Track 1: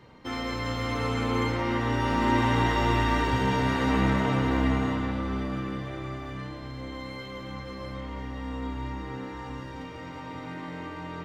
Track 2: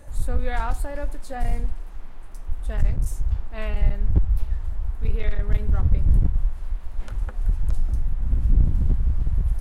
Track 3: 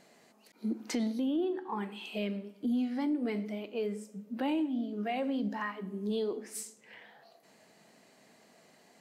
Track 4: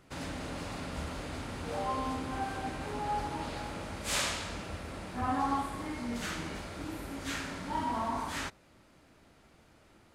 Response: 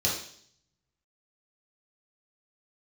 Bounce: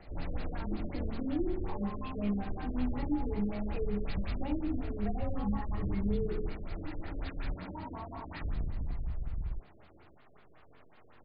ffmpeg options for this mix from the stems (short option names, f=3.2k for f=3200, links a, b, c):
-filter_complex "[0:a]aeval=exprs='abs(val(0))':c=same,volume=-18.5dB[a];[1:a]asoftclip=type=tanh:threshold=-18dB,volume=-11.5dB,asplit=3[b][c][d];[b]atrim=end=7.54,asetpts=PTS-STARTPTS,afade=t=out:st=7.536:d=0.004:c=hsin[e];[c]atrim=start=7.54:end=8.41,asetpts=PTS-STARTPTS,volume=0[f];[d]atrim=start=8.41,asetpts=PTS-STARTPTS,afade=t=in:d=0.004:c=hsin[g];[e][f][g]concat=n=3:v=0:a=1[h];[2:a]volume=1dB,asplit=2[i][j];[j]volume=-14dB[k];[3:a]volume=-1.5dB,asplit=2[l][m];[m]volume=-17.5dB[n];[i][l]amix=inputs=2:normalize=0,acompressor=threshold=-41dB:ratio=2,volume=0dB[o];[4:a]atrim=start_sample=2205[p];[k][n]amix=inputs=2:normalize=0[q];[q][p]afir=irnorm=-1:irlink=0[r];[a][h][o][r]amix=inputs=4:normalize=0,bandreject=f=520:w=17,acrossover=split=320[s][t];[t]acompressor=threshold=-41dB:ratio=4[u];[s][u]amix=inputs=2:normalize=0,afftfilt=real='re*lt(b*sr/1024,580*pow(5100/580,0.5+0.5*sin(2*PI*5.4*pts/sr)))':imag='im*lt(b*sr/1024,580*pow(5100/580,0.5+0.5*sin(2*PI*5.4*pts/sr)))':win_size=1024:overlap=0.75"